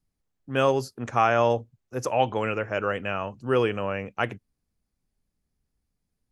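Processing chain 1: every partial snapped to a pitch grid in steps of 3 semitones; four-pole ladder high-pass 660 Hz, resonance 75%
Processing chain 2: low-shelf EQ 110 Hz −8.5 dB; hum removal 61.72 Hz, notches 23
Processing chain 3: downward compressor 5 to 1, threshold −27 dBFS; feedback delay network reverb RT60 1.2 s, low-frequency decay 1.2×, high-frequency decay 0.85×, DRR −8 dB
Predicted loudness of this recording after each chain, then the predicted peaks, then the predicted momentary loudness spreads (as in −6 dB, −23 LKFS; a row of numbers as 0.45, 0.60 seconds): −29.5, −27.0, −24.5 LKFS; −11.0, −8.5, −8.5 dBFS; 13, 9, 7 LU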